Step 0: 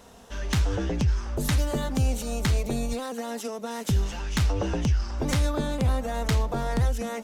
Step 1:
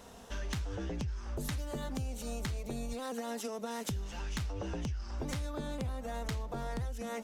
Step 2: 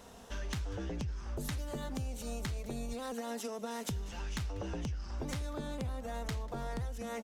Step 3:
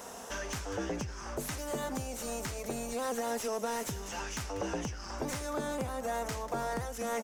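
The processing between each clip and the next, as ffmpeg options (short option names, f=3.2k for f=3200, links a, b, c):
-af "acompressor=threshold=-33dB:ratio=6,volume=-2dB"
-af "aecho=1:1:193:0.0841,volume=-1dB"
-filter_complex "[0:a]aexciter=amount=2:drive=9.9:freq=5.4k,asplit=2[a][b];[b]highpass=f=720:p=1,volume=22dB,asoftclip=type=tanh:threshold=-17dB[c];[a][c]amix=inputs=2:normalize=0,lowpass=f=1.5k:p=1,volume=-6dB,volume=-2.5dB"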